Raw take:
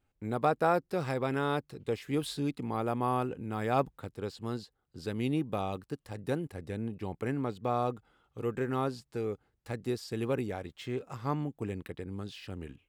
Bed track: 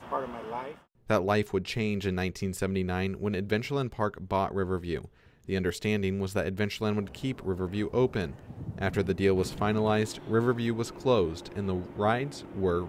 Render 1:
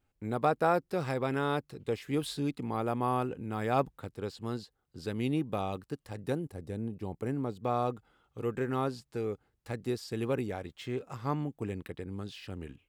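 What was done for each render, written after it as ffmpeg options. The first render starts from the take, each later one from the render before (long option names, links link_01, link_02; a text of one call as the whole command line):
ffmpeg -i in.wav -filter_complex "[0:a]asettb=1/sr,asplit=3[link_01][link_02][link_03];[link_01]atrim=end=6.324[link_04];[link_02]atrim=start=6.32:end=7.62,asetpts=PTS-STARTPTS,afade=type=in:duration=0.004:curve=qsin,afade=type=out:start_time=1.296:duration=0.004:curve=qsin,equalizer=frequency=2100:width=0.65:gain=-7.5[link_05];[link_03]atrim=start=7.616[link_06];[link_04][link_05]acrossfade=duration=0.004:curve1=hsin:curve2=qsin[link_07];[link_07][link_06]acrossfade=duration=0.004:curve1=qsin:curve2=hsin" out.wav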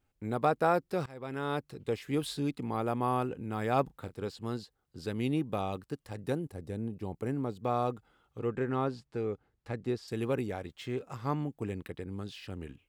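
ffmpeg -i in.wav -filter_complex "[0:a]asettb=1/sr,asplit=3[link_01][link_02][link_03];[link_01]atrim=end=3.864[link_04];[link_02]atrim=start=3.86:end=4.29,asetpts=PTS-STARTPTS,afade=type=in:duration=0.004:curve=qsin,afade=type=out:start_time=0.426:duration=0.004:curve=qsin,asplit=2[link_05][link_06];[link_06]adelay=33,volume=-12dB[link_07];[link_05][link_07]amix=inputs=2:normalize=0,atrim=end_sample=18963[link_08];[link_03]atrim=start=4.286[link_09];[link_04][link_08]acrossfade=duration=0.004:curve1=hsin:curve2=qsin[link_10];[link_10][link_09]acrossfade=duration=0.004:curve1=qsin:curve2=hsin,asettb=1/sr,asplit=3[link_11][link_12][link_13];[link_11]atrim=end=8.384[link_14];[link_12]atrim=start=8.38:end=10.08,asetpts=PTS-STARTPTS,afade=type=in:duration=0.004:curve=qsin,afade=type=out:start_time=1.696:duration=0.004:curve=qsin,aemphasis=mode=reproduction:type=50fm[link_15];[link_13]atrim=start=10.076[link_16];[link_14][link_15]acrossfade=duration=0.004:curve1=hsin:curve2=qsin[link_17];[link_17][link_16]acrossfade=duration=0.004:curve1=qsin:curve2=hsin,asplit=2[link_18][link_19];[link_18]atrim=end=1.06,asetpts=PTS-STARTPTS,afade=type=out:start_time=1.056:duration=0.004:curve=hsin:silence=0.0707946[link_20];[link_19]atrim=start=1.06,asetpts=PTS-STARTPTS,afade=type=in:duration=0.61:silence=0.0707946[link_21];[link_20][link_21]concat=n=2:v=0:a=1" out.wav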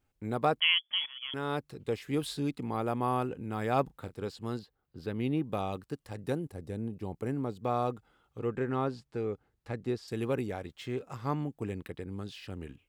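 ffmpeg -i in.wav -filter_complex "[0:a]asettb=1/sr,asplit=3[link_01][link_02][link_03];[link_01]atrim=end=0.604[link_04];[link_02]atrim=start=0.6:end=1.34,asetpts=PTS-STARTPTS,afade=type=in:duration=0.004:curve=qsin,afade=type=out:start_time=0.736:duration=0.004:curve=qsin,lowpass=frequency=3000:width_type=q:width=0.5098,lowpass=frequency=3000:width_type=q:width=0.6013,lowpass=frequency=3000:width_type=q:width=0.9,lowpass=frequency=3000:width_type=q:width=2.563,afreqshift=-3500[link_05];[link_03]atrim=start=1.336[link_06];[link_04][link_05]acrossfade=duration=0.004:curve1=hsin:curve2=qsin[link_07];[link_07][link_06]acrossfade=duration=0.004:curve1=qsin:curve2=hsin,asettb=1/sr,asplit=3[link_08][link_09][link_10];[link_08]atrim=end=4.594[link_11];[link_09]atrim=start=4.59:end=5.44,asetpts=PTS-STARTPTS,afade=type=in:duration=0.004:curve=qsin,afade=type=out:start_time=0.846:duration=0.004:curve=qsin,equalizer=frequency=7700:width=0.81:gain=-13[link_12];[link_10]atrim=start=5.436[link_13];[link_11][link_12]acrossfade=duration=0.004:curve1=hsin:curve2=qsin[link_14];[link_14][link_13]acrossfade=duration=0.004:curve1=qsin:curve2=hsin" out.wav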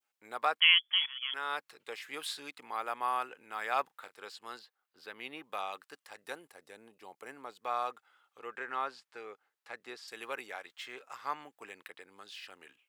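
ffmpeg -i in.wav -af "highpass=950,adynamicequalizer=threshold=0.00316:dfrequency=1700:dqfactor=0.77:tfrequency=1700:tqfactor=0.77:attack=5:release=100:ratio=0.375:range=2.5:mode=boostabove:tftype=bell" out.wav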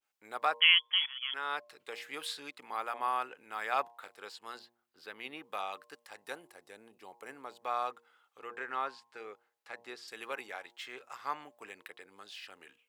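ffmpeg -i in.wav -af "bandreject=frequency=117.9:width_type=h:width=4,bandreject=frequency=235.8:width_type=h:width=4,bandreject=frequency=353.7:width_type=h:width=4,bandreject=frequency=471.6:width_type=h:width=4,bandreject=frequency=589.5:width_type=h:width=4,bandreject=frequency=707.4:width_type=h:width=4,bandreject=frequency=825.3:width_type=h:width=4,bandreject=frequency=943.2:width_type=h:width=4,bandreject=frequency=1061.1:width_type=h:width=4,adynamicequalizer=threshold=0.00282:dfrequency=6000:dqfactor=0.7:tfrequency=6000:tqfactor=0.7:attack=5:release=100:ratio=0.375:range=3:mode=cutabove:tftype=highshelf" out.wav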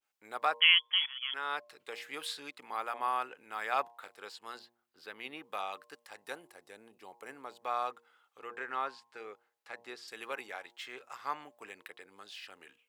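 ffmpeg -i in.wav -af anull out.wav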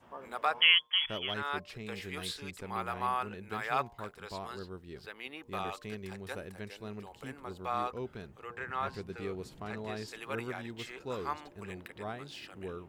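ffmpeg -i in.wav -i bed.wav -filter_complex "[1:a]volume=-14.5dB[link_01];[0:a][link_01]amix=inputs=2:normalize=0" out.wav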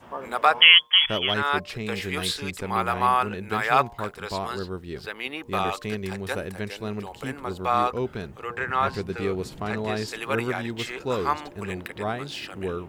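ffmpeg -i in.wav -af "volume=11.5dB,alimiter=limit=-2dB:level=0:latency=1" out.wav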